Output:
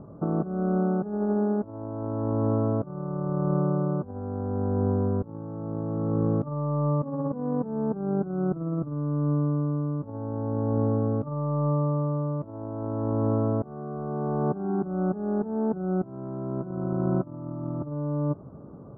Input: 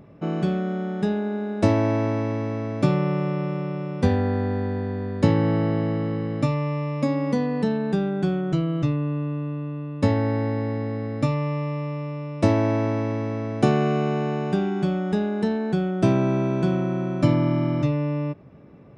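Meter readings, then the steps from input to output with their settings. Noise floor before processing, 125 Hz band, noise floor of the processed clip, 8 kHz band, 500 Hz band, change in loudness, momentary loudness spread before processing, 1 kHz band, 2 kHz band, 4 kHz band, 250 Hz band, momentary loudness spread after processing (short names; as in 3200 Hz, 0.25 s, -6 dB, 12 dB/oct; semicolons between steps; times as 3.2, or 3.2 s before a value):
-33 dBFS, -3.5 dB, -43 dBFS, n/a, -4.0 dB, -4.0 dB, 8 LU, -4.5 dB, under -15 dB, under -40 dB, -4.0 dB, 8 LU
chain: steep low-pass 1400 Hz 72 dB/oct; negative-ratio compressor -27 dBFS, ratio -0.5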